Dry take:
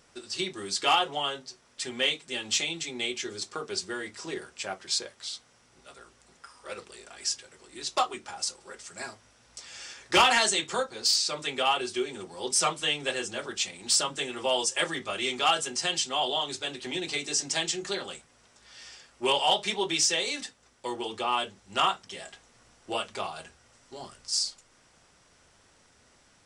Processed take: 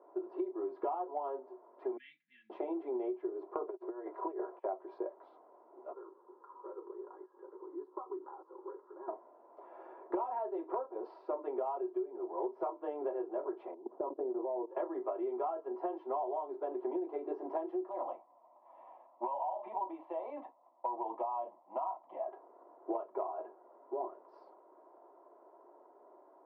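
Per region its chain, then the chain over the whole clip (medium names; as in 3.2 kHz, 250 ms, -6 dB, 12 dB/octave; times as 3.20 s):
1.97–2.50 s: Chebyshev band-stop 210–1800 Hz, order 5 + tilt shelf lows -4.5 dB, about 1.2 kHz
3.68–4.65 s: high-pass 420 Hz + compressor with a negative ratio -42 dBFS, ratio -0.5 + band-stop 880 Hz, Q 27
5.93–9.08 s: low-pass that closes with the level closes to 2.9 kHz, closed at -29.5 dBFS + compression 4:1, threshold -45 dBFS + static phaser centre 670 Hz, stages 6
13.74–14.71 s: low-pass 1.3 kHz + tilt shelf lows +7.5 dB, about 680 Hz + level held to a coarse grid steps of 19 dB
17.89–22.27 s: waveshaping leveller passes 1 + static phaser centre 1.5 kHz, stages 6 + compression, threshold -31 dBFS
whole clip: elliptic band-pass 350–980 Hz, stop band 80 dB; comb 3 ms, depth 46%; compression 16:1, threshold -41 dBFS; trim +8 dB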